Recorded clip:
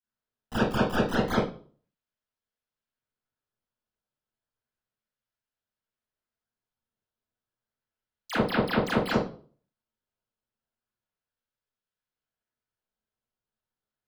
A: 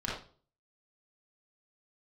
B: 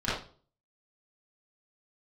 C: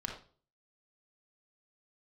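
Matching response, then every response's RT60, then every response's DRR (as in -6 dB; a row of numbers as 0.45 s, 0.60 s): B; 0.45 s, 0.45 s, 0.45 s; -7.0 dB, -12.5 dB, 0.0 dB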